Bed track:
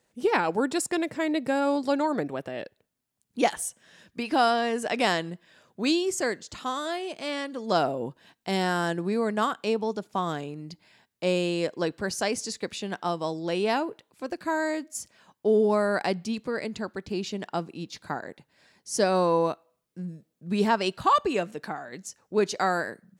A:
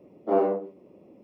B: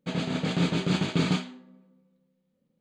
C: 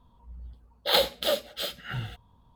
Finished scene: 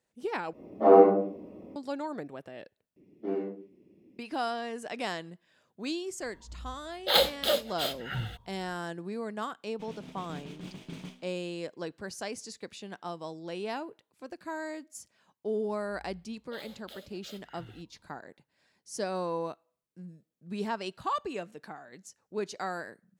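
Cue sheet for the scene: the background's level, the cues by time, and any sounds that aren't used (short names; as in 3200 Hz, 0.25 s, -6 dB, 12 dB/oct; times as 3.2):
bed track -10 dB
0.53 replace with A -7 dB + shoebox room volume 390 m³, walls furnished, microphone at 8.5 m
2.96 replace with A -5 dB + band shelf 820 Hz -14.5 dB
6.21 add C -0.5 dB
9.73 add B -17.5 dB + minimum comb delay 0.34 ms
15.66 add C -13.5 dB + compressor, threshold -31 dBFS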